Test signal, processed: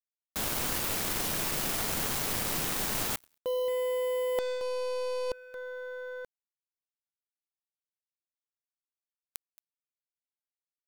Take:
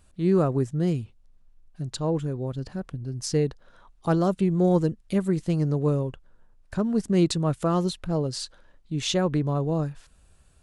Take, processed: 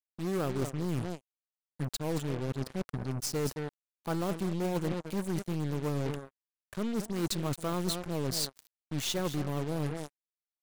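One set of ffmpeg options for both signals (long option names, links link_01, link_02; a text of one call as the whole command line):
ffmpeg -i in.wav -filter_complex "[0:a]lowshelf=frequency=75:gain=-11,asplit=2[link_01][link_02];[link_02]aecho=0:1:223:0.188[link_03];[link_01][link_03]amix=inputs=2:normalize=0,acrusher=bits=5:mix=0:aa=0.5,aeval=exprs='0.266*(cos(1*acos(clip(val(0)/0.266,-1,1)))-cos(1*PI/2))+0.0299*(cos(6*acos(clip(val(0)/0.266,-1,1)))-cos(6*PI/2))+0.0422*(cos(8*acos(clip(val(0)/0.266,-1,1)))-cos(8*PI/2))':channel_layout=same,areverse,acompressor=threshold=-28dB:ratio=12,areverse,highshelf=frequency=9600:gain=7.5" out.wav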